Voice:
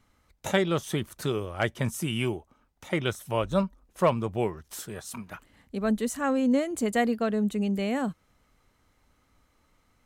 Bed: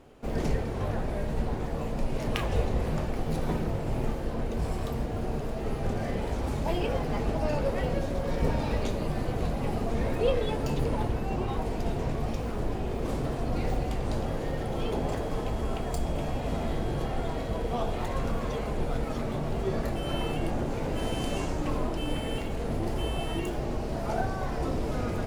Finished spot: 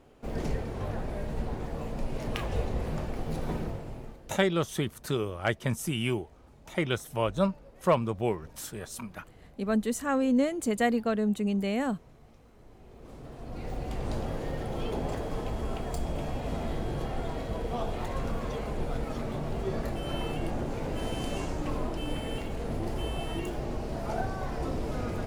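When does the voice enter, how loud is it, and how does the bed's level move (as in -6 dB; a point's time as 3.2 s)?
3.85 s, -1.0 dB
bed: 3.64 s -3.5 dB
4.51 s -25.5 dB
12.56 s -25.5 dB
14.02 s -2.5 dB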